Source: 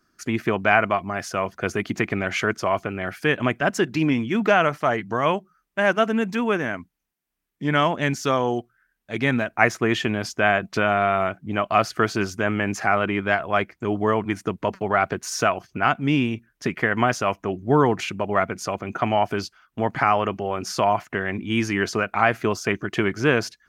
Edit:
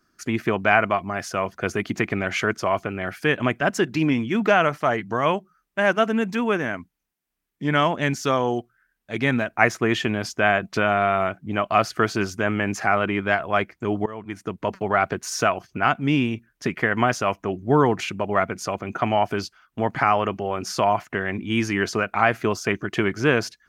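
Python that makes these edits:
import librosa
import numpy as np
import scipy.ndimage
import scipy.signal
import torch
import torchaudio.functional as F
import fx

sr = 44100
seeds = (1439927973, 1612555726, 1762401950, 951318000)

y = fx.edit(x, sr, fx.fade_in_from(start_s=14.06, length_s=0.71, floor_db=-20.0), tone=tone)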